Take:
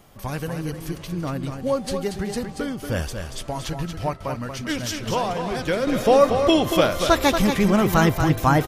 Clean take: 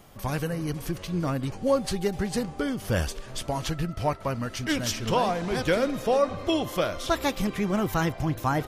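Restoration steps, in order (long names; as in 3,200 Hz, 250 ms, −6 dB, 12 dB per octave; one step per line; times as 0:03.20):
echo removal 233 ms −7 dB
level 0 dB, from 0:05.87 −7.5 dB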